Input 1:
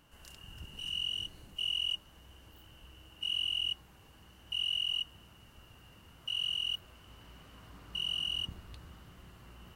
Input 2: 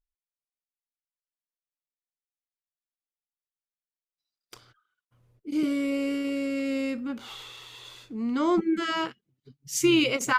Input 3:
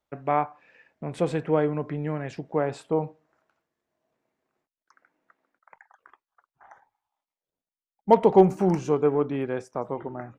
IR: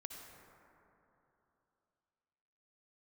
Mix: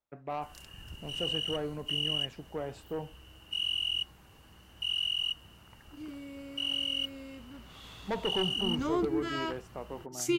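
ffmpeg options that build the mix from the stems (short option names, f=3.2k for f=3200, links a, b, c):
-filter_complex "[0:a]adelay=300,volume=1.5dB[a];[1:a]adelay=450,volume=-7dB,afade=t=in:st=7.68:d=0.24:silence=0.298538[b];[2:a]asoftclip=type=tanh:threshold=-18dB,volume=-9.5dB[c];[a][b][c]amix=inputs=3:normalize=0"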